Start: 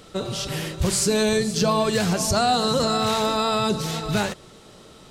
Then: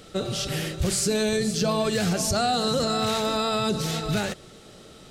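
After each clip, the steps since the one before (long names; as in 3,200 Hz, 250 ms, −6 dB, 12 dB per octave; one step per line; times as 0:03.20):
parametric band 990 Hz −11.5 dB 0.23 octaves
brickwall limiter −15.5 dBFS, peak gain reduction 4.5 dB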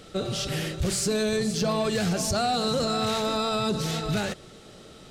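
high-shelf EQ 9,000 Hz −4.5 dB
soft clipping −17.5 dBFS, distortion −20 dB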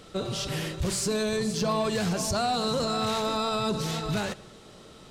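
hollow resonant body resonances 1,000 Hz, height 11 dB, ringing for 30 ms
on a send at −21.5 dB: convolution reverb RT60 0.95 s, pre-delay 35 ms
on the sum: level −2 dB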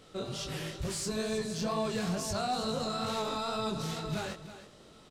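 chorus effect 2.2 Hz, delay 18 ms, depth 6.3 ms
single-tap delay 321 ms −13 dB
level −3.5 dB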